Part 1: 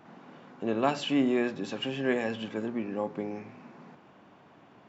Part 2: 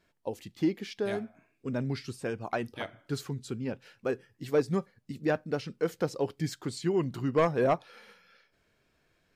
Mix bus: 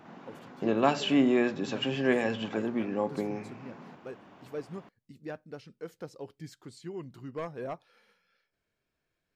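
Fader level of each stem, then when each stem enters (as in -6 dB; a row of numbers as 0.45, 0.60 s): +2.0, -12.0 dB; 0.00, 0.00 s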